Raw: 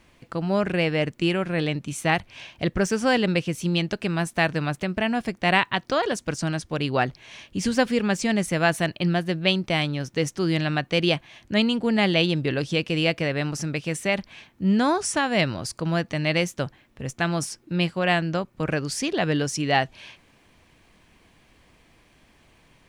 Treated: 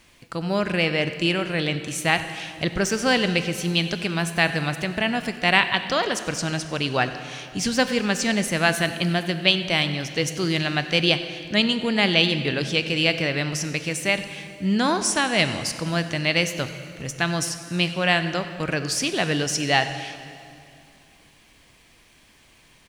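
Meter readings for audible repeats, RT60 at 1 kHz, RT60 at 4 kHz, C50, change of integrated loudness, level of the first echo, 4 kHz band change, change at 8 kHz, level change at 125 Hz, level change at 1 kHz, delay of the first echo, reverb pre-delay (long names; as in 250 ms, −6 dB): 1, 2.5 s, 2.2 s, 10.0 dB, +1.5 dB, −19.0 dB, +5.5 dB, +5.0 dB, −0.5 dB, +0.5 dB, 95 ms, 20 ms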